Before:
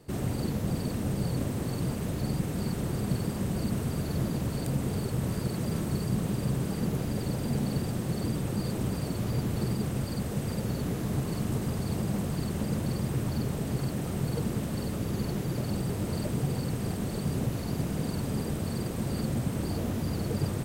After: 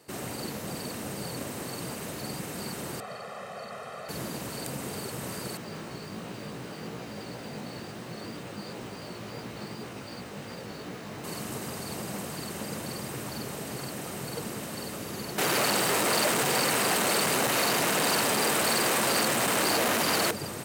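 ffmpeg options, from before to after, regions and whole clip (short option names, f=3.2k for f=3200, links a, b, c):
-filter_complex "[0:a]asettb=1/sr,asplit=3[a][b][c];[a]atrim=end=3.004[d];[b]atrim=start=3:end=4.09,asetpts=PTS-STARTPTS,afade=t=in:d=0.004:c=qsin,afade=t=out:st=1.086:d=0.004:c=qsin,bandpass=f=1k:t=q:w=0.86,aecho=1:1:1.6:0.95,atrim=end_sample=48069[e];[c]atrim=start=4.086[f];[d][e]acrossfade=d=0.004:c1=hsin:c2=qsin[g];[g][f]acrossfade=d=0.004:c1=qsin:c2=hsin,asettb=1/sr,asplit=3[h][i][j];[h]atrim=end=5.574[k];[i]atrim=start=5.57:end=11.24,asetpts=PTS-STARTPTS,afade=t=in:d=0.004:c=qsin,afade=t=out:st=5.666:d=0.004:c=qsin,lowpass=4.9k,flanger=delay=16.5:depth=3.2:speed=2.8,acrusher=bits=8:mix=0:aa=0.5[l];[j]atrim=start=11.236[m];[k][l]acrossfade=d=0.004:c1=hsin:c2=qsin[n];[n][m]acrossfade=d=0.004:c1=qsin:c2=hsin,asettb=1/sr,asplit=3[o][p][q];[o]atrim=end=15.384[r];[p]atrim=start=15.38:end=20.31,asetpts=PTS-STARTPTS,afade=t=in:d=0.004:c=qsin,afade=t=out:st=4.926:d=0.004:c=qsin,equalizer=f=5.3k:w=1.4:g=-3.5,asplit=2[s][t];[t]highpass=f=720:p=1,volume=28dB,asoftclip=type=tanh:threshold=-17.5dB[u];[s][u]amix=inputs=2:normalize=0,lowpass=f=7.4k:p=1,volume=-6dB[v];[q]atrim=start=20.306[w];[r][v]acrossfade=d=0.004:c1=hsin:c2=qsin[x];[x][w]acrossfade=d=0.004:c1=qsin:c2=hsin,highpass=f=860:p=1,bandreject=f=3.4k:w=21,volume=5dB"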